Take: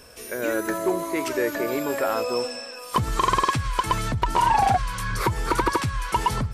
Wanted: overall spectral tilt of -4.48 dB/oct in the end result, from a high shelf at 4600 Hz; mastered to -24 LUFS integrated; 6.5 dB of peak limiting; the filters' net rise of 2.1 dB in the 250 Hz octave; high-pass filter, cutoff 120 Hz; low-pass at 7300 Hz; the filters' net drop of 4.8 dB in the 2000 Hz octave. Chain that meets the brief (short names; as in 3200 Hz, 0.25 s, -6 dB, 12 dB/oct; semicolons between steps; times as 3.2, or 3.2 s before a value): HPF 120 Hz; LPF 7300 Hz; bell 250 Hz +3.5 dB; bell 2000 Hz -7.5 dB; high shelf 4600 Hz +6.5 dB; gain +3.5 dB; limiter -13 dBFS